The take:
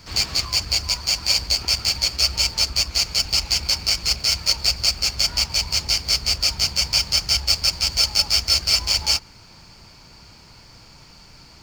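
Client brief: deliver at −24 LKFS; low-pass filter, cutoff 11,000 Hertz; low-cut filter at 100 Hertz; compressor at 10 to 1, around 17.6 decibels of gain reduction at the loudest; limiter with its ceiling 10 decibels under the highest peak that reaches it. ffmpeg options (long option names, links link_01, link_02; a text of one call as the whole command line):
ffmpeg -i in.wav -af "highpass=100,lowpass=11000,acompressor=threshold=-33dB:ratio=10,volume=16dB,alimiter=limit=-13dB:level=0:latency=1" out.wav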